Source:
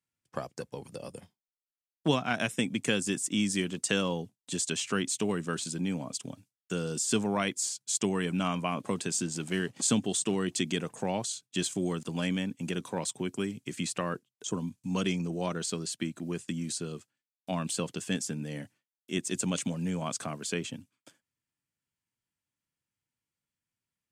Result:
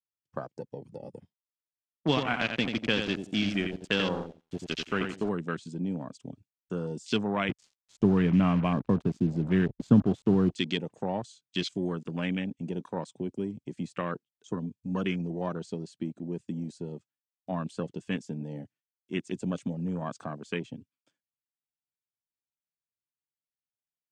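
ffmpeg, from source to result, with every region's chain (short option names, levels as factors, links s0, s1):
-filter_complex "[0:a]asettb=1/sr,asplit=3[s0][s1][s2];[s0]atrim=end=2.084[s3];[s1]atrim=start=2.08:end=5.29,asetpts=PTS-STARTPTS,afade=t=in:d=0.004:c=qsin,afade=t=out:st=3.206:d=0.004:c=qsin,highshelf=f=9800:g=-10.5,aeval=exprs='val(0)*gte(abs(val(0)),0.0237)':c=same,aecho=1:1:88|176|264:0.501|0.135|0.0365,atrim=end_sample=141561[s4];[s2]atrim=start=5.286[s5];[s3][s4]acrossfade=d=0.004:c1=hsin:c2=qsin[s6];[s6][s5]acrossfade=d=0.004:c1=qsin:c2=hsin,asettb=1/sr,asplit=3[s7][s8][s9];[s7]atrim=end=7.494[s10];[s8]atrim=start=7.49:end=10.51,asetpts=PTS-STARTPTS,afade=t=in:d=0.004:c=qsin,afade=t=out:st=3.016:d=0.004:c=qsin,aemphasis=mode=reproduction:type=riaa,acrusher=bits=5:mix=0:aa=0.5[s11];[s9]atrim=start=10.506[s12];[s10][s11]acrossfade=d=0.004:c1=hsin:c2=qsin[s13];[s13][s12]acrossfade=d=0.004:c1=qsin:c2=hsin,lowpass=6500,afwtdn=0.0126,adynamicequalizer=threshold=0.00501:dfrequency=3500:dqfactor=0.82:tfrequency=3500:tqfactor=0.82:attack=5:release=100:ratio=0.375:range=2:mode=boostabove:tftype=bell"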